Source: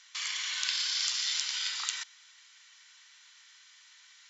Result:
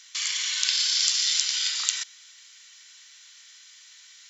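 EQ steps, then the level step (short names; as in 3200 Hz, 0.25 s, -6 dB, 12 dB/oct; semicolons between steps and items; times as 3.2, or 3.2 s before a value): HPF 570 Hz 6 dB/oct; tilt +3.5 dB/oct; 0.0 dB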